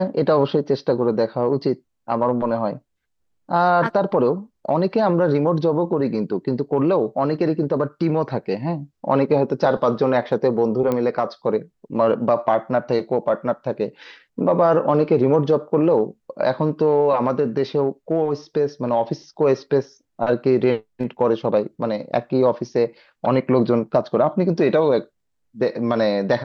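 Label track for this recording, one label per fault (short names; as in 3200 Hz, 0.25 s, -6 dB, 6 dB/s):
10.920000	10.920000	pop -11 dBFS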